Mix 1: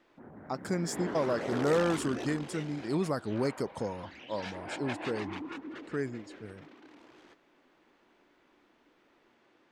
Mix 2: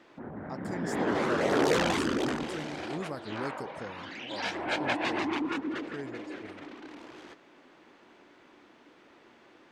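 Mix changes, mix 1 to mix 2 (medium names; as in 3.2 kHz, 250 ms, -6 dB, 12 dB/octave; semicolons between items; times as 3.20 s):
speech -7.0 dB; background +9.0 dB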